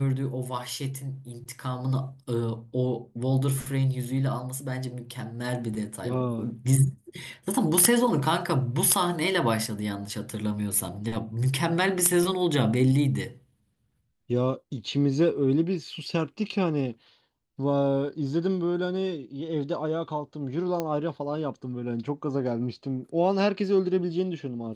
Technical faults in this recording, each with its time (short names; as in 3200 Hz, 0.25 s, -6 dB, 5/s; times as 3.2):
20.8 pop -15 dBFS